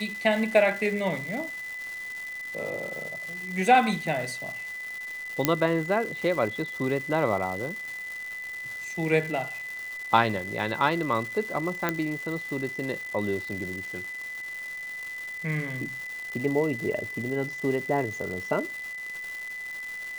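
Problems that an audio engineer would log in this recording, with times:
surface crackle 480 per second −34 dBFS
whistle 2,000 Hz −34 dBFS
0:05.45: click −4 dBFS
0:11.89: click −11 dBFS

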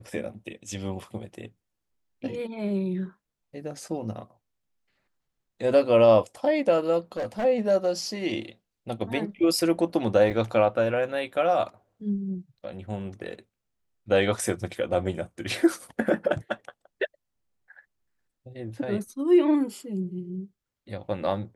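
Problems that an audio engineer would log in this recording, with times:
0:07.17–0:07.45: clipping −25.5 dBFS
0:10.30–0:10.31: drop-out 7 ms

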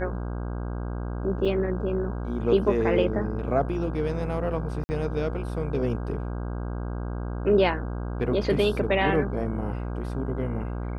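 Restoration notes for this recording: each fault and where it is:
mains buzz 60 Hz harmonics 27 −31 dBFS
0:01.45–0:01.46: drop-out 5.1 ms
0:04.84–0:04.89: drop-out 50 ms

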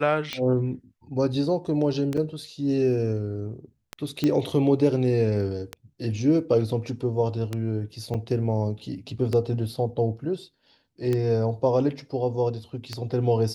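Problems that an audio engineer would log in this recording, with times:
scratch tick 33 1/3 rpm −14 dBFS
0:02.17–0:02.18: drop-out 5.4 ms
0:04.24: click −12 dBFS
0:08.14–0:08.15: drop-out 5.8 ms

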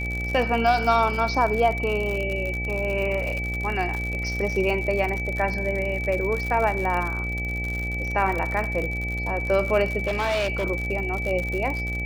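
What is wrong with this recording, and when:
mains buzz 60 Hz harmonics 14 −30 dBFS
surface crackle 70 per second −27 dBFS
whistle 2,300 Hz −29 dBFS
0:10.07–0:10.65: clipping −20.5 dBFS

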